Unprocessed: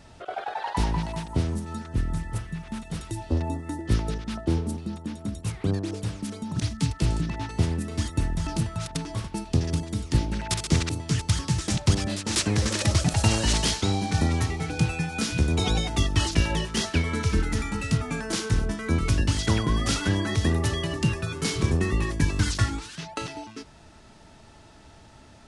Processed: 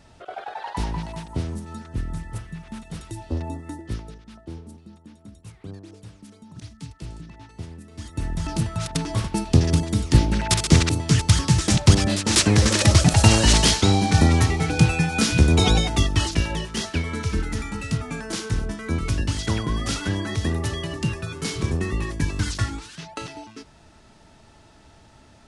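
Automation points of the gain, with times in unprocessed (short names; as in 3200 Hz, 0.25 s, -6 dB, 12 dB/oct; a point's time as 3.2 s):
3.71 s -2 dB
4.16 s -12.5 dB
7.91 s -12.5 dB
8.29 s 0 dB
9.21 s +7 dB
15.64 s +7 dB
16.51 s -1 dB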